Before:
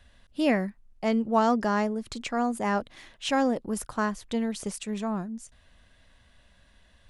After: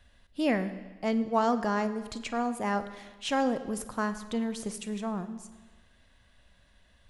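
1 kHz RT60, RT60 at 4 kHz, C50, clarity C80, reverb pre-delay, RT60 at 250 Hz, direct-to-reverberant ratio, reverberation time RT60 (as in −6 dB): 1.3 s, 1.2 s, 12.0 dB, 13.5 dB, 31 ms, 1.3 s, 11.0 dB, 1.3 s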